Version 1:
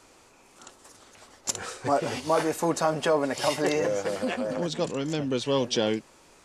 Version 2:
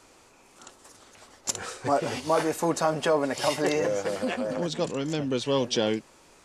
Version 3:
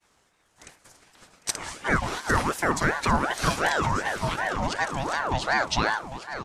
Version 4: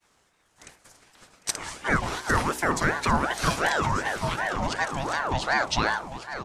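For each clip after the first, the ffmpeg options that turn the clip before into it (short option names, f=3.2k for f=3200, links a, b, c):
-af anull
-af "agate=range=-33dB:threshold=-48dB:ratio=3:detection=peak,aecho=1:1:802|1604|2406|3208:0.282|0.118|0.0497|0.0209,aeval=exprs='val(0)*sin(2*PI*850*n/s+850*0.55/2.7*sin(2*PI*2.7*n/s))':c=same,volume=3.5dB"
-af "bandreject=f=62.03:t=h:w=4,bandreject=f=124.06:t=h:w=4,bandreject=f=186.09:t=h:w=4,bandreject=f=248.12:t=h:w=4,bandreject=f=310.15:t=h:w=4,bandreject=f=372.18:t=h:w=4,bandreject=f=434.21:t=h:w=4,bandreject=f=496.24:t=h:w=4,bandreject=f=558.27:t=h:w=4,bandreject=f=620.3:t=h:w=4,bandreject=f=682.33:t=h:w=4,bandreject=f=744.36:t=h:w=4,bandreject=f=806.39:t=h:w=4,bandreject=f=868.42:t=h:w=4,bandreject=f=930.45:t=h:w=4,bandreject=f=992.48:t=h:w=4"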